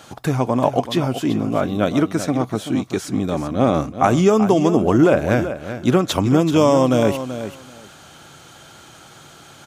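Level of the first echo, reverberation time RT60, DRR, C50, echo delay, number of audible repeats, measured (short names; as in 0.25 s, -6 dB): -11.0 dB, none, none, none, 0.383 s, 2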